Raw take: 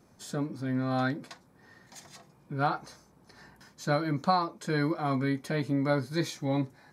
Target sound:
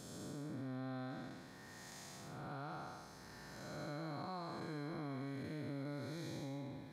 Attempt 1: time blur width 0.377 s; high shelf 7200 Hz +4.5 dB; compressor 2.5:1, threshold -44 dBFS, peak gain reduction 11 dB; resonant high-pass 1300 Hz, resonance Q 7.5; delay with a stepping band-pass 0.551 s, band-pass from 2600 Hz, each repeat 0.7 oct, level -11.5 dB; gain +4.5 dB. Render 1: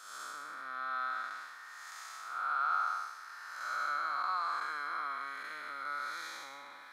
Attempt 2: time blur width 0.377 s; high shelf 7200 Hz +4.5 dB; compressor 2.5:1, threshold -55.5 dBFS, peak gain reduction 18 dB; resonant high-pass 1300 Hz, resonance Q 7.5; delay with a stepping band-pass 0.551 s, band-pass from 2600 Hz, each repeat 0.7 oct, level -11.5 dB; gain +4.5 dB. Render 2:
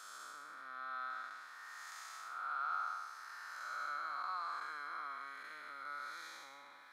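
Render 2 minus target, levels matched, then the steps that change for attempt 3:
1000 Hz band +6.0 dB
remove: resonant high-pass 1300 Hz, resonance Q 7.5

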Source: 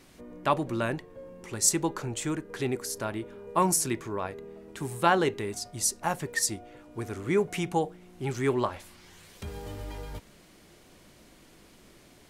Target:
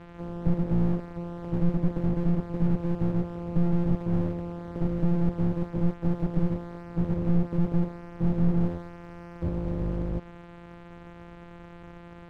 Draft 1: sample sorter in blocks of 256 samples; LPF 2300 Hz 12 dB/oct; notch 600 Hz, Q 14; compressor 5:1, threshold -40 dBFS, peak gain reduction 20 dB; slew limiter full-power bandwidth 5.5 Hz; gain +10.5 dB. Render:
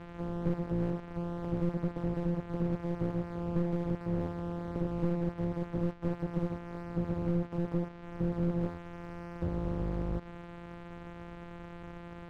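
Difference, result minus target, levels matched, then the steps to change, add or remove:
compressor: peak gain reduction +9 dB
change: compressor 5:1, threshold -28.5 dBFS, peak gain reduction 10.5 dB

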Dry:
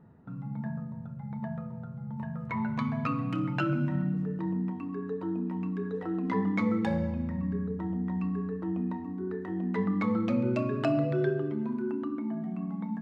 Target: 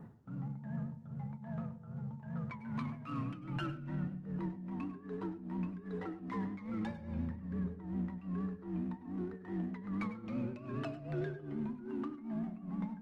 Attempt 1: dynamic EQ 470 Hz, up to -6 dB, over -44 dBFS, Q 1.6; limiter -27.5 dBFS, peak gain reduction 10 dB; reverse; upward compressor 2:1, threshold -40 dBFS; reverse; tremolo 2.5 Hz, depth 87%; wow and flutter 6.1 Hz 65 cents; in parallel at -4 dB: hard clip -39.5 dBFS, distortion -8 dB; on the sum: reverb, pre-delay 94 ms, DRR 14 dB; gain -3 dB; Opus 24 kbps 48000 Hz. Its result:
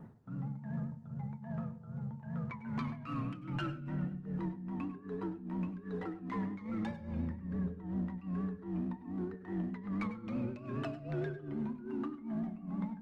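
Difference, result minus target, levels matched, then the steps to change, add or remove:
hard clip: distortion -4 dB
change: hard clip -46.5 dBFS, distortion -4 dB

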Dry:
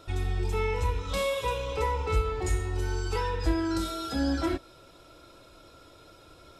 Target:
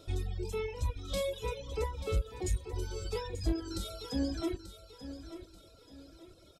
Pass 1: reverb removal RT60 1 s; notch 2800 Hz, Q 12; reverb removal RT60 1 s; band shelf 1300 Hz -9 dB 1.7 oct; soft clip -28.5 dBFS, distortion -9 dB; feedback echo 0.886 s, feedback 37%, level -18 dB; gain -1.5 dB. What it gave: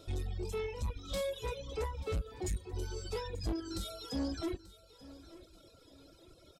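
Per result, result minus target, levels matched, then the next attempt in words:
soft clip: distortion +9 dB; echo-to-direct -6 dB
reverb removal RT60 1 s; notch 2800 Hz, Q 12; reverb removal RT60 1 s; band shelf 1300 Hz -9 dB 1.7 oct; soft clip -20 dBFS, distortion -19 dB; feedback echo 0.886 s, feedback 37%, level -18 dB; gain -1.5 dB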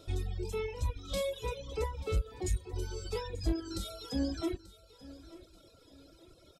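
echo-to-direct -6 dB
reverb removal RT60 1 s; notch 2800 Hz, Q 12; reverb removal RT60 1 s; band shelf 1300 Hz -9 dB 1.7 oct; soft clip -20 dBFS, distortion -19 dB; feedback echo 0.886 s, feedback 37%, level -12 dB; gain -1.5 dB

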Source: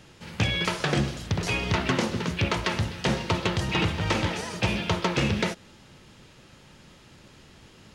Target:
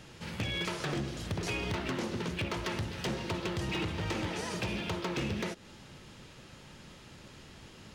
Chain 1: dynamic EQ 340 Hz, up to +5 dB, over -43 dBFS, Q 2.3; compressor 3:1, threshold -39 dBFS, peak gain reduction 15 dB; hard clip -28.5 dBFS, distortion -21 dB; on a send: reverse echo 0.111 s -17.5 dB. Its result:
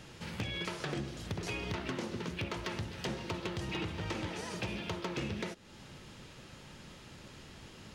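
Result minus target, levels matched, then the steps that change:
compressor: peak gain reduction +4.5 dB
change: compressor 3:1, threshold -32.5 dBFS, peak gain reduction 11 dB

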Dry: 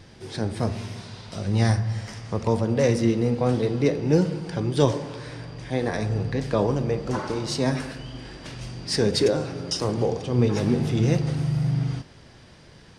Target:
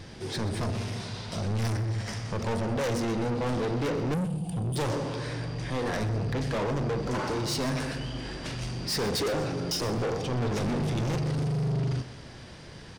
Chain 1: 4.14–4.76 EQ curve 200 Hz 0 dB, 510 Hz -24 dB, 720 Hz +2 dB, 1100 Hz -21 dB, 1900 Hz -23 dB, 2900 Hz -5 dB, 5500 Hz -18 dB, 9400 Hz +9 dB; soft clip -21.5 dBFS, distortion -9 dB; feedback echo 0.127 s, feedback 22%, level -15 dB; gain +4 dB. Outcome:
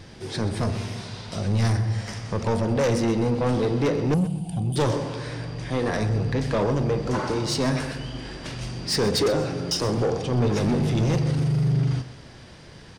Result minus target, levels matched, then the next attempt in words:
soft clip: distortion -5 dB
4.14–4.76 EQ curve 200 Hz 0 dB, 510 Hz -24 dB, 720 Hz +2 dB, 1100 Hz -21 dB, 1900 Hz -23 dB, 2900 Hz -5 dB, 5500 Hz -18 dB, 9400 Hz +9 dB; soft clip -30.5 dBFS, distortion -4 dB; feedback echo 0.127 s, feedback 22%, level -15 dB; gain +4 dB

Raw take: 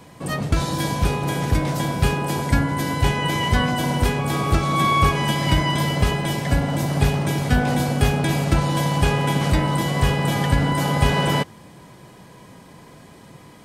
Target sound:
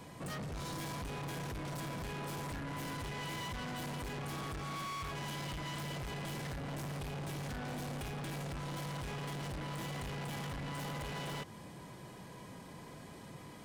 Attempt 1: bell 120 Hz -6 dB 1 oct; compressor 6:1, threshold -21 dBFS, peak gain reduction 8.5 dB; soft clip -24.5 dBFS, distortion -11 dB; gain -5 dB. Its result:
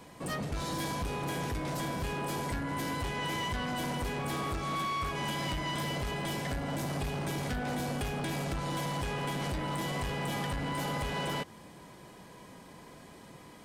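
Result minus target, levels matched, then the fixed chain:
soft clip: distortion -6 dB; 125 Hz band -2.5 dB
compressor 6:1, threshold -21 dBFS, peak gain reduction 9.5 dB; soft clip -34.5 dBFS, distortion -5 dB; gain -5 dB

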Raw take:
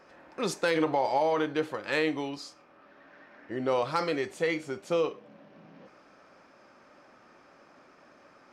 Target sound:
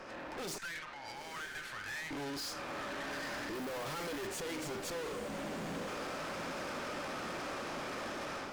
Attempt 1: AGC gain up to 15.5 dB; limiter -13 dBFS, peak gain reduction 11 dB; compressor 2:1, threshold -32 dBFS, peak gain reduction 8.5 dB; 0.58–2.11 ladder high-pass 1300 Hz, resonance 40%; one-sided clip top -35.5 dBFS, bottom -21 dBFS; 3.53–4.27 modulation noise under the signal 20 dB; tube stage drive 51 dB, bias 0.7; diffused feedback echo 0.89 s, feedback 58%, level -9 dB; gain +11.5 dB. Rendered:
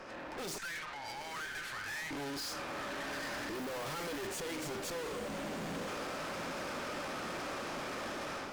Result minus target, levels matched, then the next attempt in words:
compressor: peak gain reduction -5 dB
AGC gain up to 15.5 dB; limiter -13 dBFS, peak gain reduction 11 dB; compressor 2:1, threshold -41.5 dBFS, peak gain reduction 13 dB; 0.58–2.11 ladder high-pass 1300 Hz, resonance 40%; one-sided clip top -35.5 dBFS, bottom -21 dBFS; 3.53–4.27 modulation noise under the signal 20 dB; tube stage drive 51 dB, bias 0.7; diffused feedback echo 0.89 s, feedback 58%, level -9 dB; gain +11.5 dB

